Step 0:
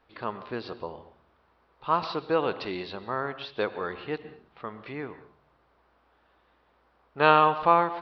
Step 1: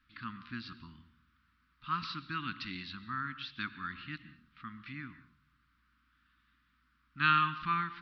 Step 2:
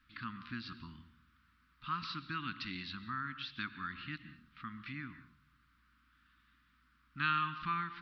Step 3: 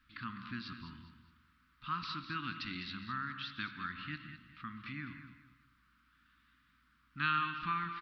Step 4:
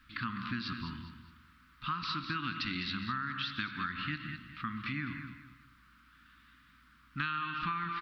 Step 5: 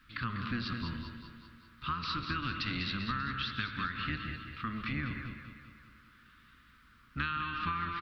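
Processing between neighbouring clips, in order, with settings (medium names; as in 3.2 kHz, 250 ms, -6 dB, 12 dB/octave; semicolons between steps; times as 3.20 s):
elliptic band-stop 260–1300 Hz, stop band 50 dB; trim -2.5 dB
compression 1.5:1, threshold -45 dBFS, peak gain reduction 8.5 dB; trim +2 dB
feedback delay 205 ms, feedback 32%, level -11 dB; on a send at -13 dB: reverberation RT60 0.55 s, pre-delay 40 ms
compression 10:1, threshold -40 dBFS, peak gain reduction 13 dB; trim +8.5 dB
octave divider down 1 oct, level -2 dB; on a send: feedback delay 196 ms, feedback 57%, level -10.5 dB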